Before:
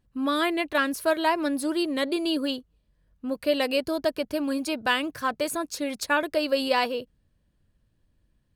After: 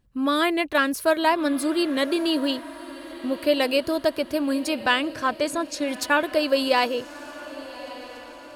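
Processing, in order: 4.8–5.88 LPF 8200 Hz 12 dB/oct; diffused feedback echo 1.228 s, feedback 51%, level -16 dB; gain +3 dB

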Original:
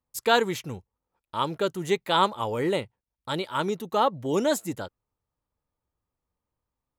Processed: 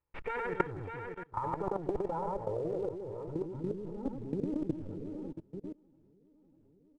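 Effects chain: minimum comb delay 2.2 ms; air absorption 340 m; loudspeakers at several distances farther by 34 m -3 dB, 94 m -12 dB; low-pass sweep 2400 Hz -> 270 Hz, 0.15–3.76; in parallel at -5.5 dB: short-mantissa float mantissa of 2-bit; on the sum: feedback echo 0.598 s, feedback 53%, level -21 dB; level quantiser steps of 24 dB; downsampling 22050 Hz; negative-ratio compressor -30 dBFS, ratio -0.5; high shelf 3000 Hz -9.5 dB

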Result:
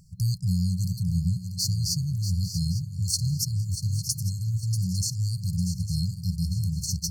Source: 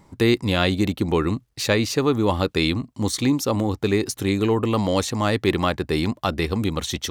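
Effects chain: swung echo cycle 0.851 s, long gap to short 3:1, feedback 36%, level -10 dB; FFT band-reject 190–4200 Hz; gain +1.5 dB

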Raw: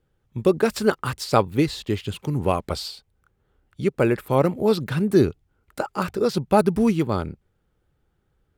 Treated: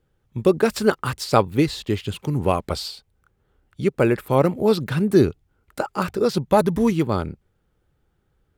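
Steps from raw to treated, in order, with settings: 6.48–6.92 ripple EQ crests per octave 1.1, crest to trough 7 dB; gain +1.5 dB

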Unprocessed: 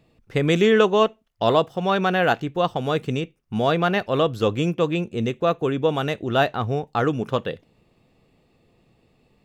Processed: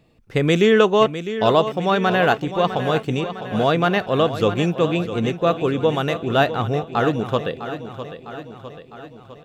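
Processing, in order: feedback echo 0.655 s, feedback 58%, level -11.5 dB; gain +2 dB

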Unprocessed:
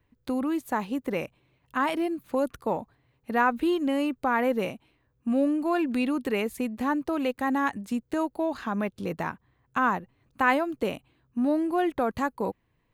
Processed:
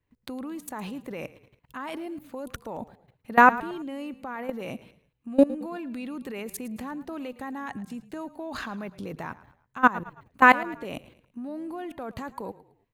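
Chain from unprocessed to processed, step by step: level quantiser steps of 22 dB; frequency-shifting echo 0.11 s, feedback 40%, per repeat -30 Hz, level -17.5 dB; gain +9 dB

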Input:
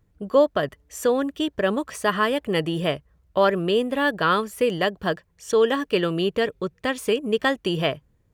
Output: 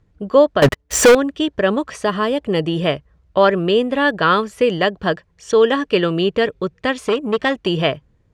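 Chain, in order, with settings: LPF 6000 Hz 12 dB/oct; 0.62–1.15 sample leveller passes 5; 1.92–2.68 dynamic EQ 1800 Hz, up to -8 dB, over -36 dBFS, Q 0.87; 7.05–7.67 core saturation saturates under 950 Hz; gain +5.5 dB

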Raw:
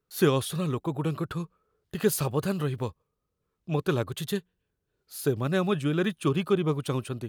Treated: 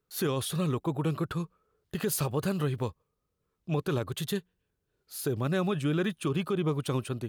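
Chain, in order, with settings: limiter -20 dBFS, peak gain reduction 9.5 dB

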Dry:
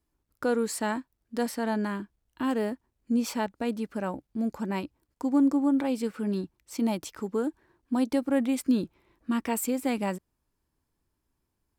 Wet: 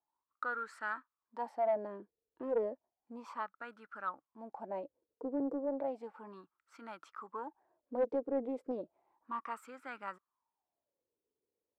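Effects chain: wah 0.33 Hz 450–1400 Hz, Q 9.9; soft clip -29.5 dBFS, distortion -23 dB; Doppler distortion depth 0.25 ms; gain +7.5 dB

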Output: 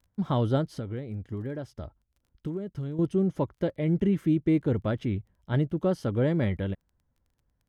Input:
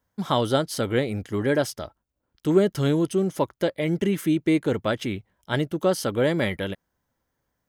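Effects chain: RIAA curve playback; 0.73–2.99 compressor 5:1, threshold -24 dBFS, peak gain reduction 14.5 dB; crackle 18/s -45 dBFS; gain -8 dB

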